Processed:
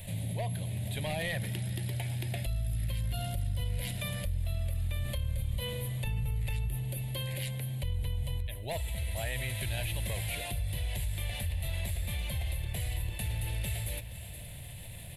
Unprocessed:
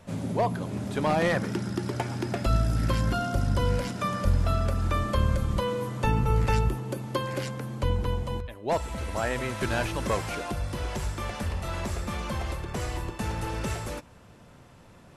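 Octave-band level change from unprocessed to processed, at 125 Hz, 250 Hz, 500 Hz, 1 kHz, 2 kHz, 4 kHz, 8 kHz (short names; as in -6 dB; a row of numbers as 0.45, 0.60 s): -4.0, -12.5, -12.5, -16.0, -6.0, -1.0, +0.5 dB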